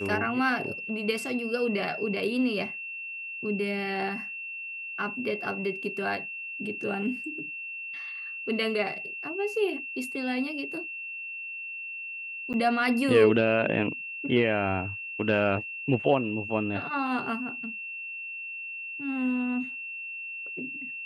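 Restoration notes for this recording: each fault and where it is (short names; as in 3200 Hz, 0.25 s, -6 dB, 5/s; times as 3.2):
tone 2700 Hz -35 dBFS
12.53–12.54 gap 9.6 ms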